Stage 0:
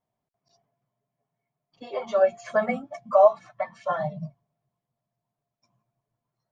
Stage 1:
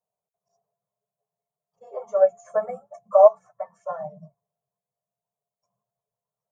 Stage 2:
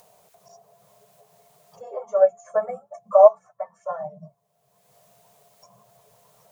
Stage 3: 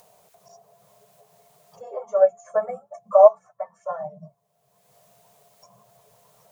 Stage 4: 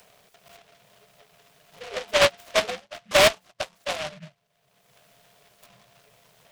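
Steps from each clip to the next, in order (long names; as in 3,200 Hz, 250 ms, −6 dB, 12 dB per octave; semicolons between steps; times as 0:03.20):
drawn EQ curve 130 Hz 0 dB, 200 Hz +7 dB, 280 Hz −29 dB, 430 Hz +14 dB, 1,300 Hz +6 dB, 2,600 Hz −11 dB, 4,200 Hz −17 dB, 6,400 Hz +12 dB; expander for the loud parts 1.5 to 1, over −16 dBFS; level −7 dB
low-shelf EQ 180 Hz −5 dB; upward compression, threshold −34 dBFS; level +1.5 dB
no processing that can be heard
hard clipping −13 dBFS, distortion −8 dB; short delay modulated by noise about 2,100 Hz, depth 0.2 ms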